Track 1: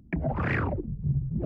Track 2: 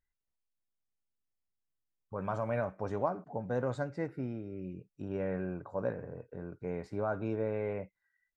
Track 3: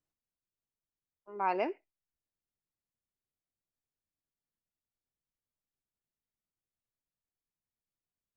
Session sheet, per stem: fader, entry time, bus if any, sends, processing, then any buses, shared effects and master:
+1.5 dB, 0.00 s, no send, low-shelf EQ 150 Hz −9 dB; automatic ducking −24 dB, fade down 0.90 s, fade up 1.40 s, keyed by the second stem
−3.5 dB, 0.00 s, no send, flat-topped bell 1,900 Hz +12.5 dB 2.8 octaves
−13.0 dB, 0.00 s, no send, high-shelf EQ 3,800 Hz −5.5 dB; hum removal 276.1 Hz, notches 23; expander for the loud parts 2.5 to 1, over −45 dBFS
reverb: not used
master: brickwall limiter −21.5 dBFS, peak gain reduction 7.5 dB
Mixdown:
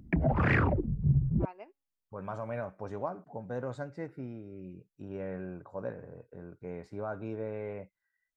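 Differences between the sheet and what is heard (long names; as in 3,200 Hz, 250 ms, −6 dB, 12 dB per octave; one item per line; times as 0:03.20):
stem 1: missing low-shelf EQ 150 Hz −9 dB
stem 2: missing flat-topped bell 1,900 Hz +12.5 dB 2.8 octaves
master: missing brickwall limiter −21.5 dBFS, peak gain reduction 7.5 dB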